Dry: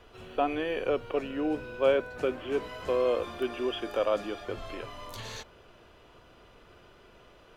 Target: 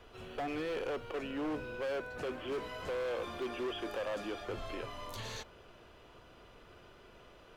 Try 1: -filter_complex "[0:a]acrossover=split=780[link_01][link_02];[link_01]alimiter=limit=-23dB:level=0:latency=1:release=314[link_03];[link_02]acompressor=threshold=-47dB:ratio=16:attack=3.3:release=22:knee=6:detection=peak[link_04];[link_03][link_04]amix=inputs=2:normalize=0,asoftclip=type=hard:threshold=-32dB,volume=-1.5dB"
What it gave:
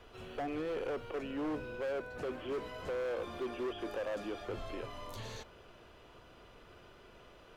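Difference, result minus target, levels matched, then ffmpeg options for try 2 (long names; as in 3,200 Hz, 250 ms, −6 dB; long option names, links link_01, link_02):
downward compressor: peak gain reduction +7.5 dB
-filter_complex "[0:a]acrossover=split=780[link_01][link_02];[link_01]alimiter=limit=-23dB:level=0:latency=1:release=314[link_03];[link_02]acompressor=threshold=-39dB:ratio=16:attack=3.3:release=22:knee=6:detection=peak[link_04];[link_03][link_04]amix=inputs=2:normalize=0,asoftclip=type=hard:threshold=-32dB,volume=-1.5dB"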